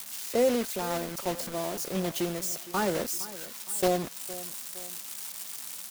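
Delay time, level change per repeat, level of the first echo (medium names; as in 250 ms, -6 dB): 463 ms, -6.5 dB, -17.0 dB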